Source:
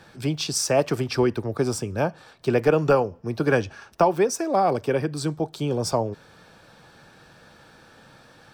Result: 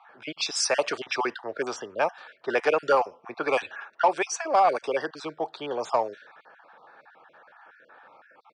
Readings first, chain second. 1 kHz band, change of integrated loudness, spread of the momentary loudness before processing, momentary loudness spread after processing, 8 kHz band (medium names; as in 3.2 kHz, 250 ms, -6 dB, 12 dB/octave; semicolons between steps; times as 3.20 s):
+1.5 dB, -3.0 dB, 8 LU, 12 LU, -3.0 dB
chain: random holes in the spectrogram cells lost 28%; high-pass 810 Hz 12 dB/octave; treble shelf 7 kHz -10.5 dB; in parallel at -4 dB: saturation -25 dBFS, distortion -11 dB; on the sum: level-controlled noise filter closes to 1.2 kHz, open at -22.5 dBFS; resampled via 22.05 kHz; trim +2.5 dB